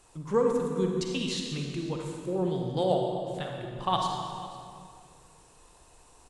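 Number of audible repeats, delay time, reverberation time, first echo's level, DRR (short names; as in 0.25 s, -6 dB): 1, 0.493 s, 2.3 s, -19.0 dB, 1.0 dB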